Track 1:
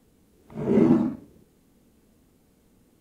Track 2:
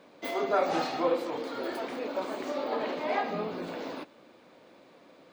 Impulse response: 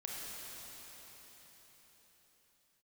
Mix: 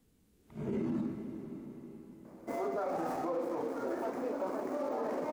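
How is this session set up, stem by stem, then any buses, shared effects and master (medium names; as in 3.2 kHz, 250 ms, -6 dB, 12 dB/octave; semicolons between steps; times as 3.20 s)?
-9.0 dB, 0.00 s, send -7 dB, peaking EQ 660 Hz -5.5 dB 2 oct
+0.5 dB, 2.25 s, no send, median filter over 15 samples; peaking EQ 3.4 kHz -12.5 dB 1.4 oct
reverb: on, RT60 4.8 s, pre-delay 26 ms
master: peak limiter -27 dBFS, peak gain reduction 11 dB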